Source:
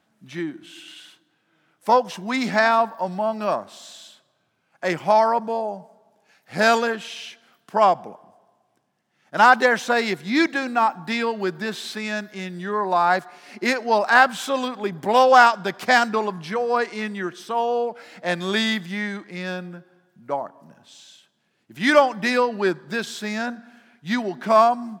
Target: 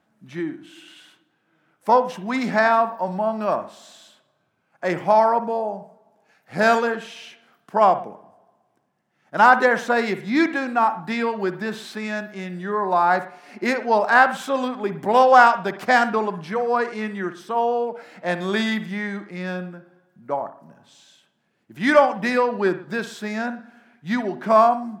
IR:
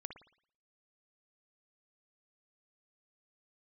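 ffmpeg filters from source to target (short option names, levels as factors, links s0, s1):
-filter_complex "[0:a]asplit=2[s0][s1];[1:a]atrim=start_sample=2205,afade=t=out:st=0.21:d=0.01,atrim=end_sample=9702,lowpass=2400[s2];[s1][s2]afir=irnorm=-1:irlink=0,volume=1.5[s3];[s0][s3]amix=inputs=2:normalize=0,volume=0.596"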